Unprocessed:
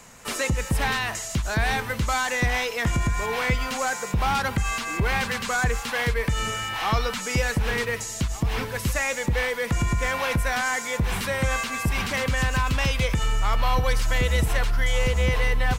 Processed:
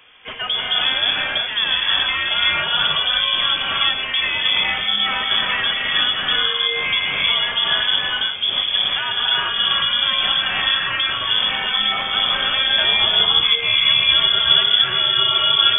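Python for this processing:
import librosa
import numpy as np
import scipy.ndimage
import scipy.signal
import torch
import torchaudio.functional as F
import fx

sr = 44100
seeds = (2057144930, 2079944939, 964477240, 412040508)

y = fx.rev_gated(x, sr, seeds[0], gate_ms=400, shape='rising', drr_db=-3.0)
y = fx.freq_invert(y, sr, carrier_hz=3400)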